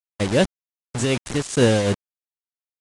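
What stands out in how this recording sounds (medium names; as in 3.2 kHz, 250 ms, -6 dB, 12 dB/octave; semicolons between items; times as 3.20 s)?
tremolo triangle 2.6 Hz, depth 70%; a quantiser's noise floor 6-bit, dither none; AAC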